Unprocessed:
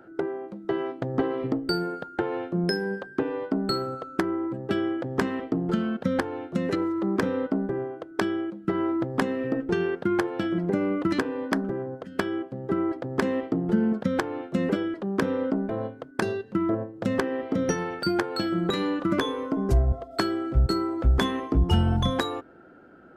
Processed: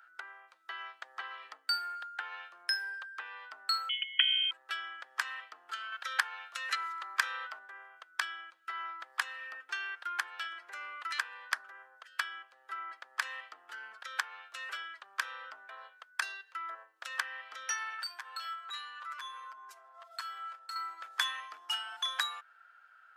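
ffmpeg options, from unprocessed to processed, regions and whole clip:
-filter_complex "[0:a]asettb=1/sr,asplit=3[s0][s1][s2];[s0]atrim=end=3.894[s3];[s1]atrim=start=3.89:end=4.51,asetpts=PTS-STARTPTS,afade=t=in:d=0.004:c=qsin,afade=t=out:st=0.616:d=0.004:c=qsin,lowshelf=f=130:g=-6.5,aecho=1:1:2:0.46,atrim=end_sample=27342,lowpass=f=3000:t=q:w=0.5098,lowpass=f=3000:t=q:w=0.6013,lowpass=f=3000:t=q:w=0.9,lowpass=f=3000:t=q:w=2.563,afreqshift=-3500[s4];[s2]atrim=start=4.506[s5];[s3][s4]acrossfade=d=0.004:c1=hsin:c2=qsin[s6];[s6][s5]acrossfade=d=0.004:c1=qsin:c2=hsin,asettb=1/sr,asplit=3[s7][s8][s9];[s7]atrim=end=5.924[s10];[s8]atrim=start=5.92:end=7.59,asetpts=PTS-STARTPTS,afade=t=in:d=0.004:c=qsin,afade=t=out:st=1.666:d=0.004:c=qsin,equalizer=f=110:t=o:w=2.9:g=-14.5,acontrast=39[s11];[s9]atrim=start=7.586[s12];[s10][s11]acrossfade=d=0.004:c1=hsin:c2=qsin[s13];[s13][s12]acrossfade=d=0.004:c1=qsin:c2=hsin,asettb=1/sr,asplit=3[s14][s15][s16];[s14]atrim=end=17.984[s17];[s15]atrim=start=17.98:end=20.76,asetpts=PTS-STARTPTS,afade=t=in:d=0.004:c=qsin,afade=t=out:st=2.776:d=0.004:c=qsin,equalizer=f=1000:w=5.1:g=8,aecho=1:1:7.5:1,atrim=end_sample=122598,acompressor=threshold=0.0282:ratio=8:attack=3.2:release=140:knee=1:detection=peak[s18];[s16]atrim=start=20.756[s19];[s17][s18]acrossfade=d=0.004:c1=hsin:c2=qsin[s20];[s20][s19]acrossfade=d=0.004:c1=qsin:c2=hsin,highpass=f=1300:w=0.5412,highpass=f=1300:w=1.3066,bandreject=f=2100:w=23"

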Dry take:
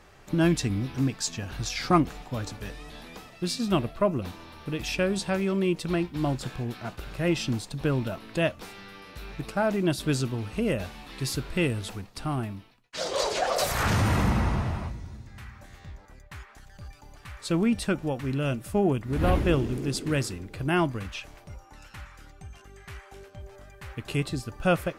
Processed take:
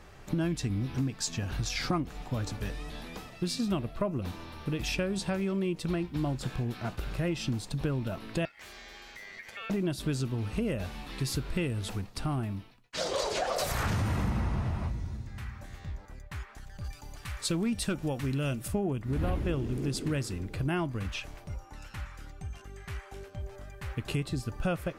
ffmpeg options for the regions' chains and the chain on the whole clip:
-filter_complex "[0:a]asettb=1/sr,asplit=3[s0][s1][s2];[s0]atrim=end=8.454[s3];[s1]atrim=start=8.45:end=9.7,asetpts=PTS-STARTPTS,afade=t=in:d=0.004:c=qsin,afade=t=out:st=1.246:d=0.004:c=qsin,acompressor=threshold=0.00891:ratio=3:attack=3.2:release=140:knee=1:detection=peak,aeval=exprs='val(0)*sin(2*PI*2000*n/s)':c=same[s4];[s2]atrim=start=9.696[s5];[s3][s4]acrossfade=d=0.004:c1=hsin:c2=qsin[s6];[s6][s5]acrossfade=d=0.004:c1=qsin:c2=hsin,asettb=1/sr,asplit=3[s7][s8][s9];[s7]atrim=end=16.844[s10];[s8]atrim=start=16.84:end=18.68,asetpts=PTS-STARTPTS,afade=t=in:d=0.004:c=qsin,afade=t=out:st=1.836:d=0.004:c=qsin,highshelf=f=2900:g=7.5,volume=7.5,asoftclip=hard,volume=0.133[s11];[s9]atrim=start=18.676[s12];[s10][s11]acrossfade=d=0.004:c1=hsin:c2=qsin[s13];[s13][s12]acrossfade=d=0.004:c1=qsin:c2=hsin,lowshelf=f=220:g=5,acompressor=threshold=0.0398:ratio=4"

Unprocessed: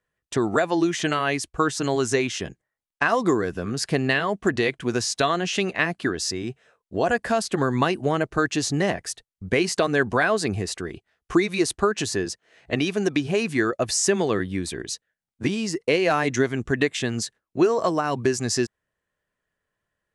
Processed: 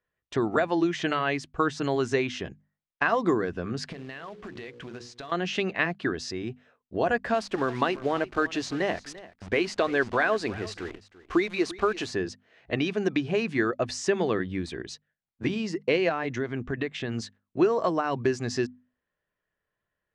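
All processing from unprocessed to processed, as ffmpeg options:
-filter_complex "[0:a]asettb=1/sr,asplit=3[s0][s1][s2];[s0]atrim=end=3.924[s3];[s1]atrim=start=3.92:end=5.32,asetpts=PTS-STARTPTS,afade=t=in:d=0.004:c=qsin,afade=t=out:st=1.396:d=0.004:c=qsin,bandreject=f=60:t=h:w=6,bandreject=f=120:t=h:w=6,bandreject=f=180:t=h:w=6,bandreject=f=240:t=h:w=6,bandreject=f=300:t=h:w=6,bandreject=f=360:t=h:w=6,bandreject=f=420:t=h:w=6,bandreject=f=480:t=h:w=6,bandreject=f=540:t=h:w=6,acompressor=threshold=0.0251:ratio=20:attack=3.2:release=140:knee=1:detection=peak,acrusher=bits=3:mode=log:mix=0:aa=0.000001[s4];[s2]atrim=start=5.316[s5];[s3][s4]acrossfade=d=0.004:c1=hsin:c2=qsin[s6];[s6][s5]acrossfade=d=0.004:c1=qsin:c2=hsin,asettb=1/sr,asplit=3[s7][s8][s9];[s7]atrim=end=7.344[s10];[s8]atrim=start=7.34:end=12.11,asetpts=PTS-STARTPTS,afade=t=in:d=0.004:c=qsin,afade=t=out:st=4.766:d=0.004:c=qsin,equalizer=f=150:w=1.6:g=-9,acrusher=bits=7:dc=4:mix=0:aa=0.000001,aecho=1:1:342:0.126,atrim=end_sample=210357[s11];[s9]atrim=start=12.106[s12];[s10][s11]acrossfade=d=0.004:c1=hsin:c2=qsin[s13];[s13][s12]acrossfade=d=0.004:c1=qsin:c2=hsin,asettb=1/sr,asplit=3[s14][s15][s16];[s14]atrim=end=16.094[s17];[s15]atrim=start=16.09:end=17.12,asetpts=PTS-STARTPTS,afade=t=in:d=0.004:c=qsin,afade=t=out:st=1.026:d=0.004:c=qsin,lowpass=f=3800:p=1,acompressor=threshold=0.0708:ratio=2.5:attack=3.2:release=140:knee=1:detection=peak[s18];[s16]atrim=start=17.116[s19];[s17][s18]acrossfade=d=0.004:c1=hsin:c2=qsin[s20];[s20][s19]acrossfade=d=0.004:c1=qsin:c2=hsin,lowpass=3900,bandreject=f=50:t=h:w=6,bandreject=f=100:t=h:w=6,bandreject=f=150:t=h:w=6,bandreject=f=200:t=h:w=6,bandreject=f=250:t=h:w=6,volume=0.708"

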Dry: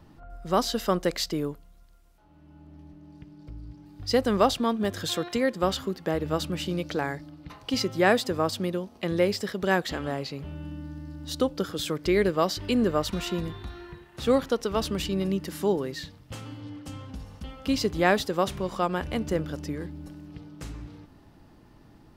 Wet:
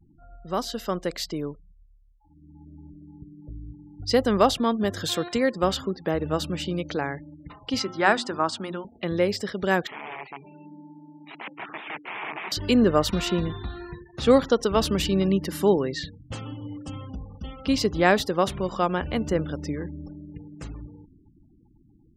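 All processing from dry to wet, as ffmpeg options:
-filter_complex "[0:a]asettb=1/sr,asplit=3[s0][s1][s2];[s0]atrim=end=7.794[s3];[s1]atrim=start=7.79:end=8.85,asetpts=PTS-STARTPTS,afade=t=in:d=0.004:c=qsin,afade=t=out:st=1.056:d=0.004:c=qsin,highpass=190,equalizer=f=490:t=q:w=4:g=-8,equalizer=f=920:t=q:w=4:g=7,equalizer=f=1400:t=q:w=4:g=7,lowpass=f=9600:w=0.5412,lowpass=f=9600:w=1.3066,bandreject=f=60:t=h:w=6,bandreject=f=120:t=h:w=6,bandreject=f=180:t=h:w=6,bandreject=f=240:t=h:w=6,bandreject=f=300:t=h:w=6,bandreject=f=360:t=h:w=6[s4];[s2]atrim=start=8.846[s5];[s3][s4]acrossfade=d=0.004:c1=hsin:c2=qsin[s6];[s6][s5]acrossfade=d=0.004:c1=qsin:c2=hsin,asettb=1/sr,asplit=3[s7][s8][s9];[s7]atrim=end=9.874[s10];[s8]atrim=start=9.87:end=12.52,asetpts=PTS-STARTPTS,afade=t=in:d=0.004:c=qsin,afade=t=out:st=2.646:d=0.004:c=qsin,aeval=exprs='(tanh(7.08*val(0)+0.55)-tanh(0.55))/7.08':c=same,aeval=exprs='(mod(35.5*val(0)+1,2)-1)/35.5':c=same,highpass=f=170:w=0.5412,highpass=f=170:w=1.3066,equalizer=f=170:t=q:w=4:g=-10,equalizer=f=250:t=q:w=4:g=-10,equalizer=f=520:t=q:w=4:g=-9,equalizer=f=880:t=q:w=4:g=4,equalizer=f=1500:t=q:w=4:g=-4,equalizer=f=2300:t=q:w=4:g=6,lowpass=f=2700:w=0.5412,lowpass=f=2700:w=1.3066[s11];[s9]atrim=start=12.516[s12];[s10][s11]acrossfade=d=0.004:c1=hsin:c2=qsin[s13];[s13][s12]acrossfade=d=0.004:c1=qsin:c2=hsin,afftfilt=real='re*gte(hypot(re,im),0.00562)':imag='im*gte(hypot(re,im),0.00562)':win_size=1024:overlap=0.75,dynaudnorm=f=420:g=9:m=3.76,volume=0.631"

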